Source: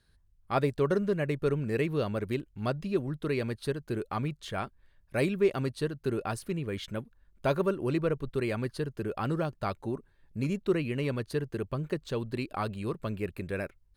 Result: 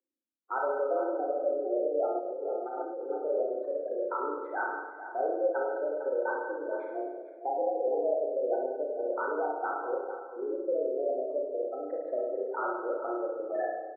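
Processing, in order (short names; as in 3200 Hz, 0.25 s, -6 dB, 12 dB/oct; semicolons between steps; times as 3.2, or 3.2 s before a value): median filter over 15 samples; spectral gate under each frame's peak -10 dB strong; dynamic EQ 1300 Hz, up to +5 dB, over -48 dBFS, Q 1.2; limiter -23.5 dBFS, peak gain reduction 7 dB; outdoor echo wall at 78 m, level -11 dB; spring tank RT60 1.2 s, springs 32/50 ms, chirp 30 ms, DRR -2 dB; 2.19–3.09 negative-ratio compressor -33 dBFS, ratio -1; mistuned SSB +140 Hz 240–2100 Hz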